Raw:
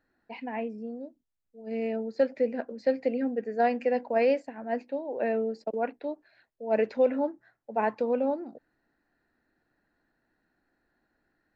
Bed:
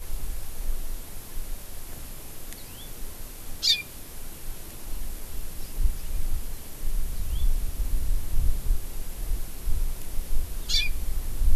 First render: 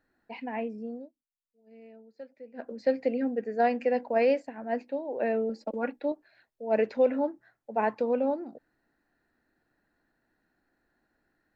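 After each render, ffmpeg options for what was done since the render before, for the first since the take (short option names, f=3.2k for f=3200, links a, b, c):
-filter_complex "[0:a]asettb=1/sr,asplit=3[a][b][c];[a]atrim=end=5.494[d];[b]atrim=start=5.49:end=6.12,asetpts=PTS-STARTPTS,afade=t=in:d=0.004:c=qsin,afade=t=out:st=0.626:d=0.004:c=qsin,aecho=1:1:3.6:0.68,atrim=end_sample=27783[e];[c]atrim=start=6.116[f];[d][e]acrossfade=d=0.004:c1=hsin:c2=qsin[g];[g][f]acrossfade=d=0.004:c1=qsin:c2=hsin,asplit=3[h][i][j];[h]atrim=end=1.12,asetpts=PTS-STARTPTS,afade=t=out:st=0.96:d=0.16:silence=0.1[k];[i]atrim=start=1.12:end=2.53,asetpts=PTS-STARTPTS,volume=-20dB[l];[j]atrim=start=2.53,asetpts=PTS-STARTPTS,afade=t=in:d=0.16:silence=0.1[m];[k][l][m]concat=n=3:v=0:a=1"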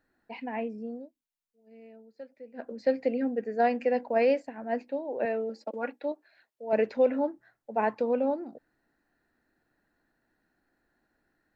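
-filter_complex "[0:a]asettb=1/sr,asplit=3[a][b][c];[a]atrim=end=5.254[d];[b]atrim=start=5.25:end=6.73,asetpts=PTS-STARTPTS,afade=t=in:d=0.004:c=qsin,afade=t=out:st=1.476:d=0.004:c=qsin,highpass=f=390:p=1[e];[c]atrim=start=6.726[f];[d][e]acrossfade=d=0.004:c1=hsin:c2=qsin[g];[g][f]acrossfade=d=0.004:c1=qsin:c2=hsin"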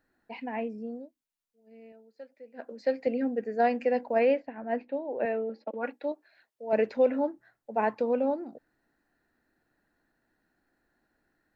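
-filter_complex "[0:a]asettb=1/sr,asplit=3[a][b][c];[a]atrim=end=1.924[d];[b]atrim=start=1.92:end=3.07,asetpts=PTS-STARTPTS,afade=t=in:d=0.004:c=qsin,afade=t=out:st=1.146:d=0.004:c=qsin,lowshelf=f=220:g=-11[e];[c]atrim=start=3.066[f];[d][e]acrossfade=d=0.004:c1=hsin:c2=qsin[g];[g][f]acrossfade=d=0.004:c1=qsin:c2=hsin,asettb=1/sr,asplit=3[h][i][j];[h]atrim=end=4.194[k];[i]atrim=start=4.19:end=5.84,asetpts=PTS-STARTPTS,afade=t=in:d=0.004:c=qsin,afade=t=out:st=1.646:d=0.004:c=qsin,lowpass=f=3.6k:w=0.5412,lowpass=f=3.6k:w=1.3066[l];[j]atrim=start=5.836[m];[k][l]acrossfade=d=0.004:c1=hsin:c2=qsin[n];[n][m]acrossfade=d=0.004:c1=qsin:c2=hsin"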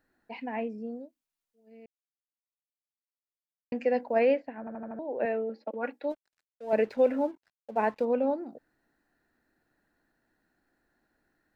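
-filter_complex "[0:a]asettb=1/sr,asplit=3[a][b][c];[a]atrim=end=6.104[d];[b]atrim=start=6.1:end=8.05,asetpts=PTS-STARTPTS,afade=t=in:d=0.004:c=qsin,afade=t=out:st=1.946:d=0.004:c=qsin,aeval=exprs='sgn(val(0))*max(abs(val(0))-0.00141,0)':c=same[e];[c]atrim=start=8.046[f];[d][e]acrossfade=d=0.004:c1=hsin:c2=qsin[g];[g][f]acrossfade=d=0.004:c1=qsin:c2=hsin,asplit=8[h][i][j][k][l][m][n][o];[h]atrim=end=1.86,asetpts=PTS-STARTPTS,afade=t=out:st=1.856:d=0.004:c=hsin[p];[i]atrim=start=1.86:end=3.72,asetpts=PTS-STARTPTS,volume=0[q];[j]atrim=start=3.72:end=4.672,asetpts=PTS-STARTPTS,afade=t=in:d=0.004:c=hsin[r];[k]atrim=start=4.588:end=4.672[s];[l]atrim=start=4.588:end=4.672[t];[m]atrim=start=4.588:end=4.672[u];[n]atrim=start=4.588:end=4.672[v];[o]atrim=start=4.988[w];[p][q][r]concat=n=3:v=0:a=1[x];[x][s]acrossfade=d=0.004:c1=hsin:c2=hsin[y];[y][t]acrossfade=d=0.004:c1=hsin:c2=hsin[z];[z][u]acrossfade=d=0.004:c1=hsin:c2=hsin[aa];[aa][v]acrossfade=d=0.004:c1=hsin:c2=hsin[ab];[ab][w]acrossfade=d=0.004:c1=hsin:c2=hsin"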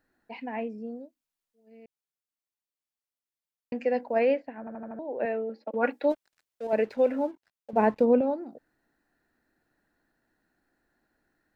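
-filter_complex "[0:a]asettb=1/sr,asplit=3[a][b][c];[a]atrim=end=7.734[d];[b]atrim=start=7.73:end=8.21,asetpts=PTS-STARTPTS,afade=t=in:d=0.004:c=qsin,afade=t=out:st=0.476:d=0.004:c=qsin,lowshelf=f=480:g=11.5[e];[c]atrim=start=8.206[f];[d][e]acrossfade=d=0.004:c1=hsin:c2=qsin[g];[g][f]acrossfade=d=0.004:c1=qsin:c2=hsin,asplit=3[h][i][j];[h]atrim=end=5.742[k];[i]atrim=start=5.738:end=6.672,asetpts=PTS-STARTPTS,volume=7.5dB[l];[j]atrim=start=6.668[m];[k][l]acrossfade=d=0.004:c1=hsin:c2=hsin[n];[n][m]acrossfade=d=0.004:c1=hsin:c2=hsin"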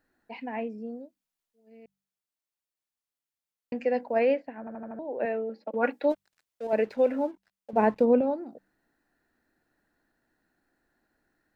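-af "bandreject=f=48.89:t=h:w=4,bandreject=f=97.78:t=h:w=4,bandreject=f=146.67:t=h:w=4,bandreject=f=195.56:t=h:w=4"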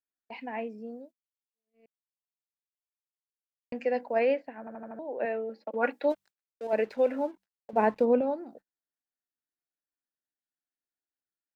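-af "agate=range=-29dB:threshold=-48dB:ratio=16:detection=peak,lowshelf=f=310:g=-6.5"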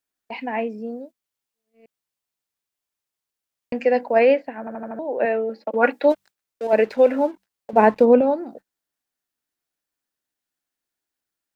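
-af "volume=10dB"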